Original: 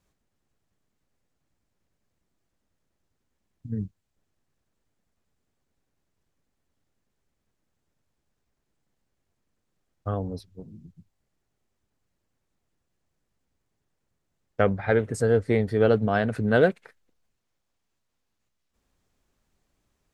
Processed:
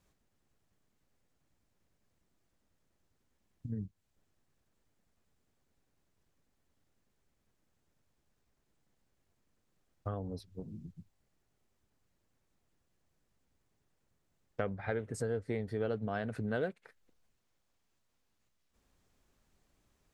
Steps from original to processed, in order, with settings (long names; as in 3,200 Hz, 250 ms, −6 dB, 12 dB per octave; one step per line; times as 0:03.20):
downward compressor 2.5 to 1, threshold −39 dBFS, peak gain reduction 16.5 dB